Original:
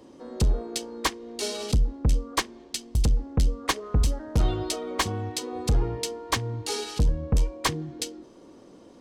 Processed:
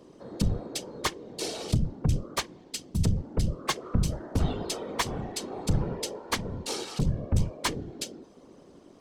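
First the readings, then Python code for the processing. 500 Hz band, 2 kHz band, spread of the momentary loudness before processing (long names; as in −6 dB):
−3.0 dB, −3.0 dB, 7 LU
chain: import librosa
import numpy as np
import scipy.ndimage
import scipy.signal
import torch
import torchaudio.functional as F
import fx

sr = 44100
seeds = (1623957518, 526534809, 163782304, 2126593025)

y = fx.whisperise(x, sr, seeds[0])
y = y * librosa.db_to_amplitude(-3.0)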